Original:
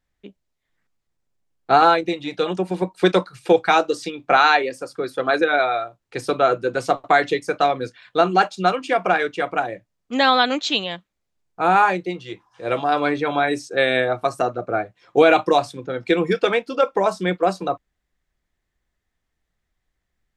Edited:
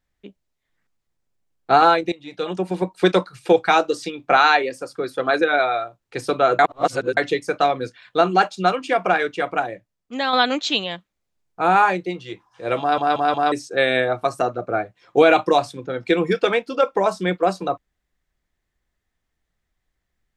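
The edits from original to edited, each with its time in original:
2.12–2.67 fade in, from -17 dB
6.59–7.17 reverse
9.6–10.33 fade out quadratic, to -6.5 dB
12.8 stutter in place 0.18 s, 4 plays

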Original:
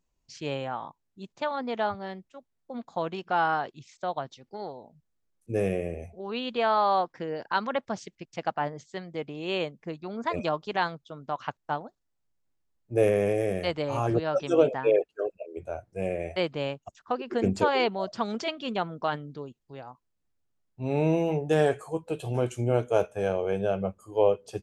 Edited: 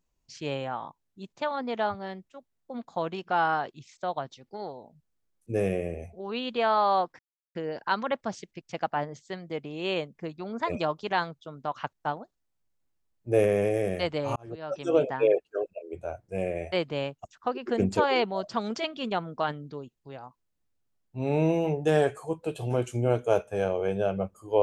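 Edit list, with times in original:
7.19 insert silence 0.36 s
14–14.77 fade in

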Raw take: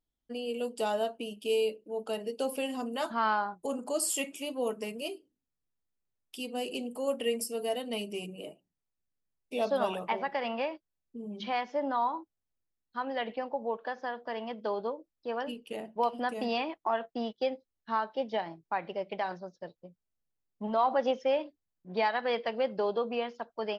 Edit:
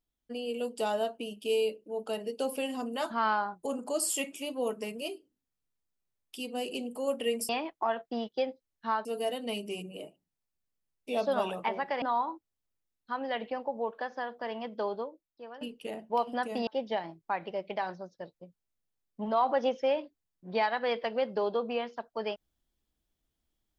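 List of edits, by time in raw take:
10.46–11.88 cut
14.76–15.47 fade out quadratic, to -12.5 dB
16.53–18.09 move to 7.49

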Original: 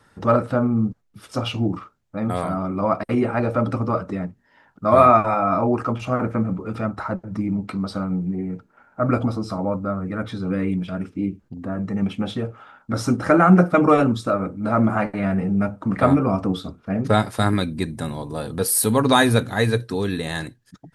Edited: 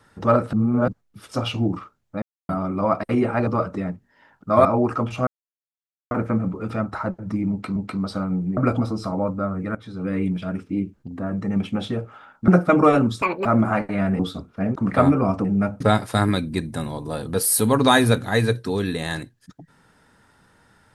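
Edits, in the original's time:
0.53–0.88 reverse
2.22–2.49 mute
3.47–3.82 cut
5–5.54 cut
6.16 insert silence 0.84 s
7.56–7.81 loop, 2 plays
8.37–9.03 cut
10.21–10.68 fade in, from -15 dB
12.94–13.53 cut
14.27–14.7 speed 184%
15.44–15.8 swap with 16.49–17.05

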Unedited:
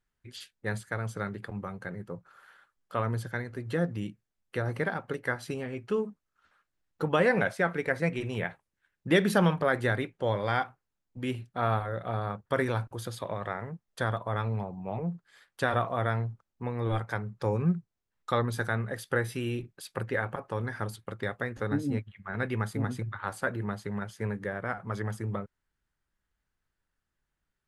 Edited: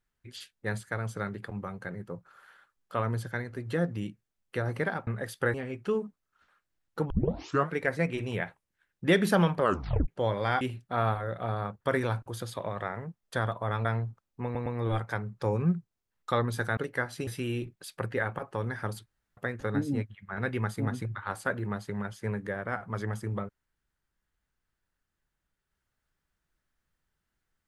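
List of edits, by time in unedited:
5.07–5.57 swap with 18.77–19.24
7.13 tape start 0.62 s
9.63 tape stop 0.48 s
10.64–11.26 cut
14.5–16.07 cut
16.66 stutter 0.11 s, 3 plays
21.03–21.34 room tone

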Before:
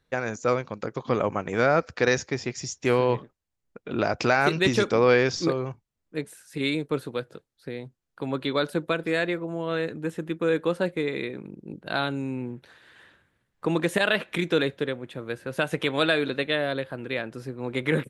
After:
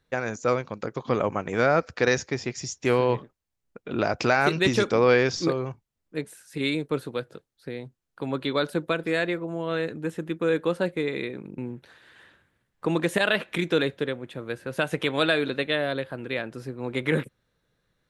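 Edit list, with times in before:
11.58–12.38 cut

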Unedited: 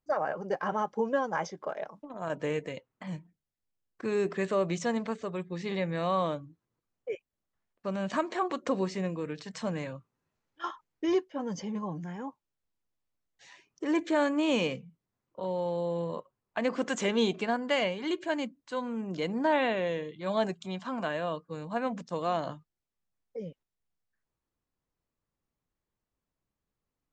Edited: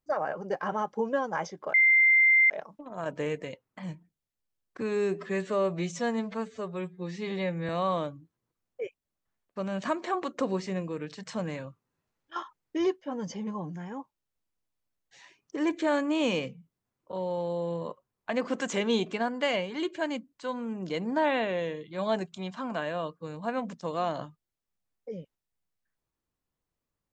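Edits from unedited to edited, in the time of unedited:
1.74 add tone 2090 Hz -17 dBFS 0.76 s
4.05–5.97 stretch 1.5×

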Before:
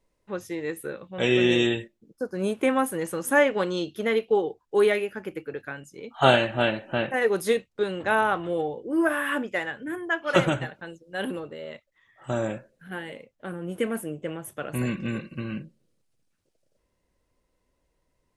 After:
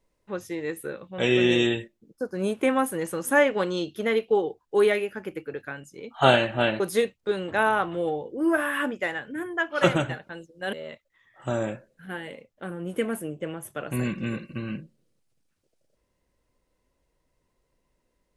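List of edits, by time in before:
6.8–7.32 cut
11.25–11.55 cut

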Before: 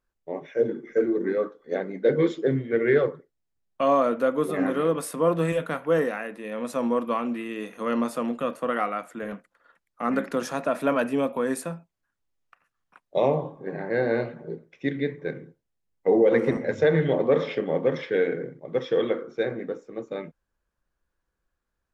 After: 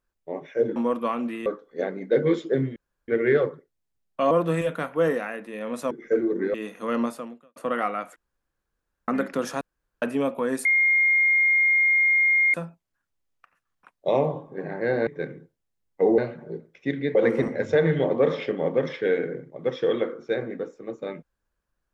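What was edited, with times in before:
0.76–1.39 swap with 6.82–7.52
2.69 insert room tone 0.32 s
3.92–5.22 cut
8.02–8.54 fade out quadratic
9.14–10.06 room tone
10.59–11 room tone
11.63 add tone 2130 Hz -16.5 dBFS 1.89 s
14.16–15.13 move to 16.24

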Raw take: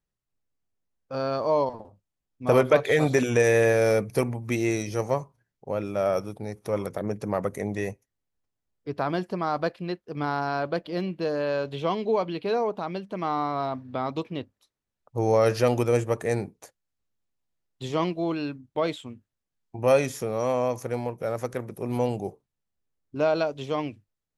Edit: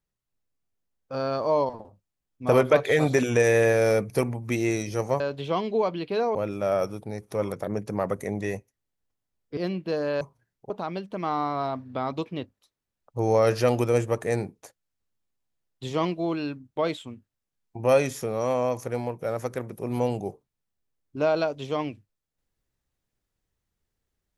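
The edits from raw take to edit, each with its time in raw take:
5.2–5.69 swap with 11.54–12.69
8.91–10.9 cut

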